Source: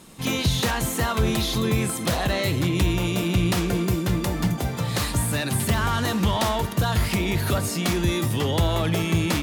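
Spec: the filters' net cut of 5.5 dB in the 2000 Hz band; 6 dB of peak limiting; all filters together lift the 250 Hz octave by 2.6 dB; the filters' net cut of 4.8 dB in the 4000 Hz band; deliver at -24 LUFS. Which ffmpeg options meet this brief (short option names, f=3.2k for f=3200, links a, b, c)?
-af "equalizer=f=250:t=o:g=4,equalizer=f=2k:t=o:g=-6,equalizer=f=4k:t=o:g=-4,volume=1dB,alimiter=limit=-15dB:level=0:latency=1"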